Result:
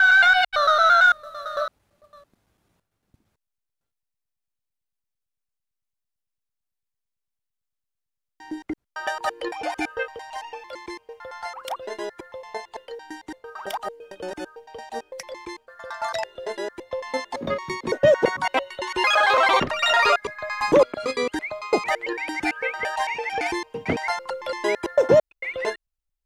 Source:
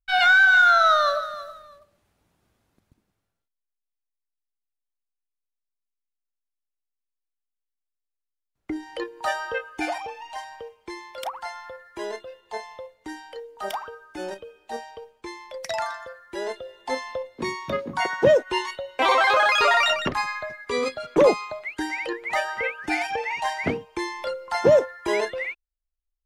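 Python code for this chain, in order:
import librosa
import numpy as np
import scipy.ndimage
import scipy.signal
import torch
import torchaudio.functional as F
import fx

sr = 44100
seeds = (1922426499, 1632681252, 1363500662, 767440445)

y = fx.block_reorder(x, sr, ms=112.0, group=5)
y = F.gain(torch.from_numpy(y), 1.0).numpy()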